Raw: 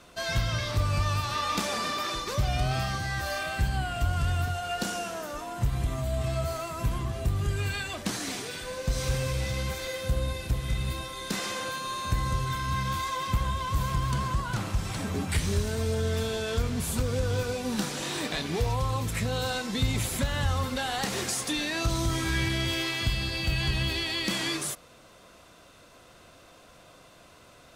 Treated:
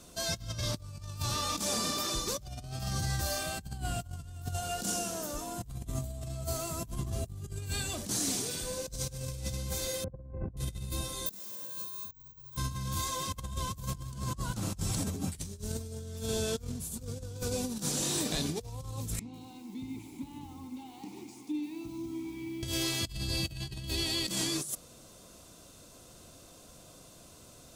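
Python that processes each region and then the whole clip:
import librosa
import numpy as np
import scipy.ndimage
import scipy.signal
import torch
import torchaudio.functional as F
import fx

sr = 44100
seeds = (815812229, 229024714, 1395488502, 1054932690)

y = fx.chain(x, sr, fx.gaussian_blur(sigma=6.8),
    fx.env_flatten(amount_pct=50), at=(10.04, 10.57))
y = fx.chain(y, sr, fx.high_shelf(hz=9400.0, db=3.0),
    fx.resample_bad(factor=2, down='none', up='zero_stuff'), at=(11.26, 12.57))
y = fx.chain(y, sr, fx.vowel_filter(vowel='u'),
    fx.echo_crushed(ms=146, feedback_pct=35, bits=9, wet_db=-10), at=(19.19, 22.63))
y = fx.curve_eq(y, sr, hz=(240.0, 2000.0, 7000.0), db=(0, -12, 5))
y = fx.over_compress(y, sr, threshold_db=-33.0, ratio=-0.5)
y = y * 10.0 ** (-2.0 / 20.0)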